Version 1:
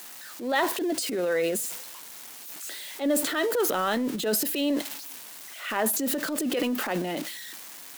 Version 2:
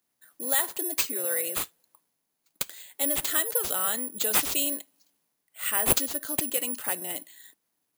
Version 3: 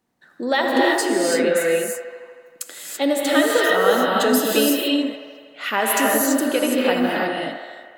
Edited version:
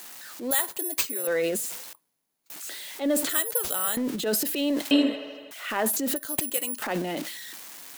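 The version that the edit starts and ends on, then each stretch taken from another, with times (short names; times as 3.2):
1
0.51–1.27 from 2
1.93–2.5 from 2
3.29–3.97 from 2
4.91–5.51 from 3
6.16–6.82 from 2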